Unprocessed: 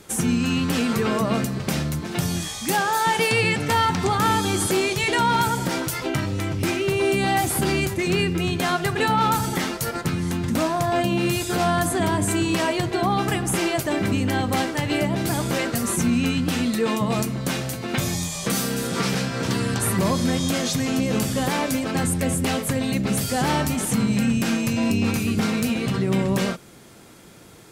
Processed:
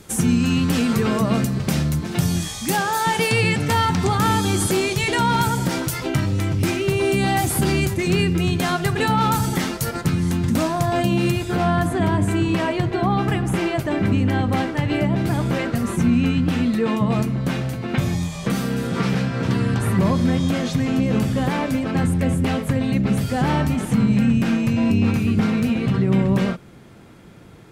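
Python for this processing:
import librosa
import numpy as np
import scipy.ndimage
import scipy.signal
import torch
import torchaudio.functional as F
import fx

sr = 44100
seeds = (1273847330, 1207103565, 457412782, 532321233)

y = fx.bass_treble(x, sr, bass_db=6, treble_db=fx.steps((0.0, 1.0), (11.3, -11.0)))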